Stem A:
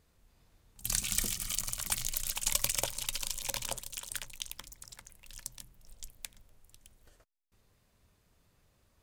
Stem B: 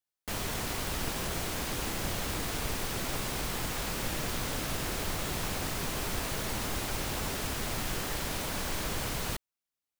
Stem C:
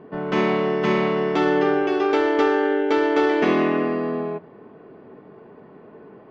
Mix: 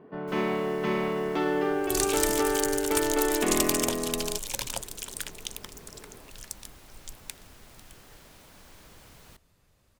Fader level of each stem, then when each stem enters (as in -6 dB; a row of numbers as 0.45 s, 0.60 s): +3.0 dB, -18.5 dB, -7.5 dB; 1.05 s, 0.00 s, 0.00 s